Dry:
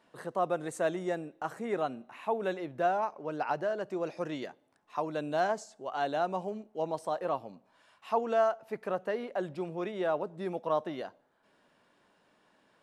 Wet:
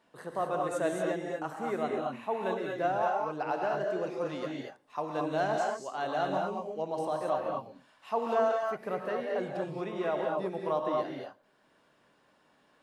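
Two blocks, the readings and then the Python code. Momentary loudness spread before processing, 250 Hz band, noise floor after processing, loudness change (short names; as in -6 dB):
9 LU, +1.0 dB, -67 dBFS, +1.0 dB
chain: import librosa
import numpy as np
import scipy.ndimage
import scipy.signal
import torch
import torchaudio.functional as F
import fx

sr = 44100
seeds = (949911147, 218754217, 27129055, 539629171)

y = fx.rev_gated(x, sr, seeds[0], gate_ms=260, shape='rising', drr_db=-0.5)
y = y * librosa.db_to_amplitude(-2.0)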